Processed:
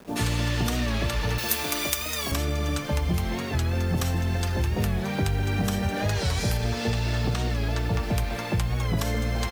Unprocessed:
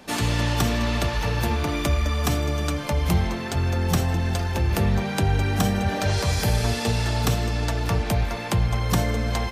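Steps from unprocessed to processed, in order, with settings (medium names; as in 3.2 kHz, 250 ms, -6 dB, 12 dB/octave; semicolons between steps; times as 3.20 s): 6.49–7.95 s: distance through air 70 m; bands offset in time lows, highs 80 ms, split 820 Hz; compression, threshold -21 dBFS, peak gain reduction 6.5 dB; bit crusher 8-bit; 1.38–2.32 s: RIAA curve recording; warped record 45 rpm, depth 100 cents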